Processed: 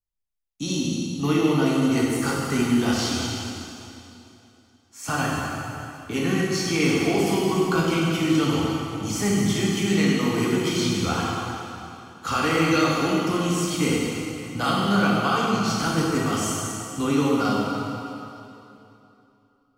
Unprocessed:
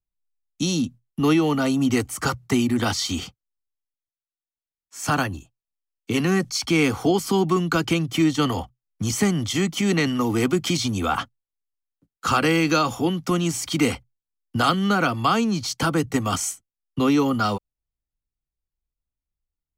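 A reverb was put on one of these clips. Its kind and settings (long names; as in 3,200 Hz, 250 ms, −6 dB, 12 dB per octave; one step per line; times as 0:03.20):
dense smooth reverb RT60 2.9 s, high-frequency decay 0.9×, DRR −5.5 dB
level −7 dB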